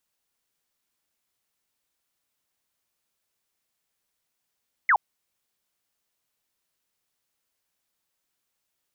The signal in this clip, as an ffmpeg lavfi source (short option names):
-f lavfi -i "aevalsrc='0.168*clip(t/0.002,0,1)*clip((0.07-t)/0.002,0,1)*sin(2*PI*2200*0.07/log(740/2200)*(exp(log(740/2200)*t/0.07)-1))':d=0.07:s=44100"